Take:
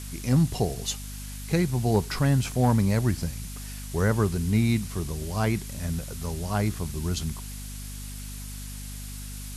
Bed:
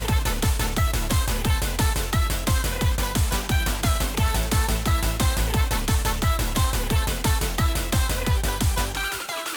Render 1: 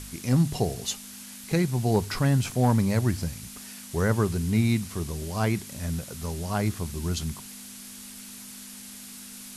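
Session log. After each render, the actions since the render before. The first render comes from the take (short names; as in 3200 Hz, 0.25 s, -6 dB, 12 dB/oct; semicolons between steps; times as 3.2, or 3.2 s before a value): de-hum 50 Hz, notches 3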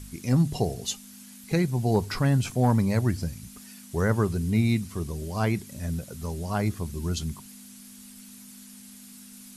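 denoiser 8 dB, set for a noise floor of -43 dBFS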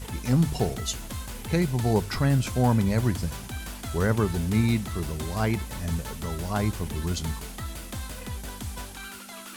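add bed -13.5 dB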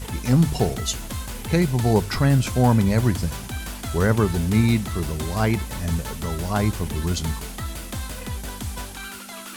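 gain +4.5 dB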